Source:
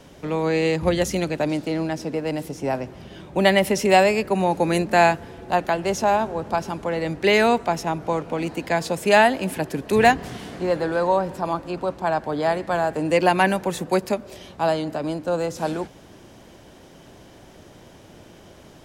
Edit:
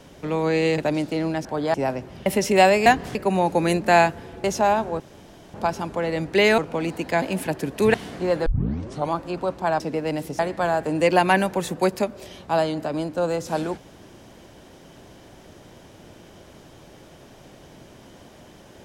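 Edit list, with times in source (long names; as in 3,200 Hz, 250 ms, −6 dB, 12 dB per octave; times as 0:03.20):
0:00.78–0:01.33: remove
0:02.00–0:02.59: swap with 0:12.20–0:12.49
0:03.11–0:03.60: remove
0:05.49–0:05.87: remove
0:06.43: splice in room tone 0.54 s
0:07.47–0:08.16: remove
0:08.80–0:09.33: remove
0:10.05–0:10.34: move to 0:04.20
0:10.86: tape start 0.66 s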